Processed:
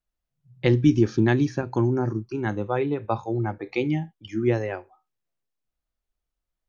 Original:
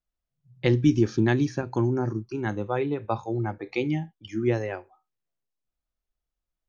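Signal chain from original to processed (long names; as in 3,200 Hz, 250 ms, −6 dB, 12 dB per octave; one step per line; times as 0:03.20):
high-shelf EQ 5,300 Hz −5 dB
level +2 dB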